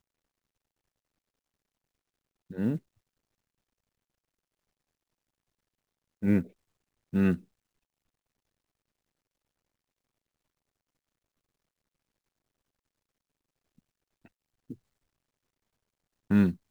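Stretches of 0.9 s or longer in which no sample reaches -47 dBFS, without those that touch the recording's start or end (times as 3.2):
2.79–6.22
7.41–14.25
14.74–16.3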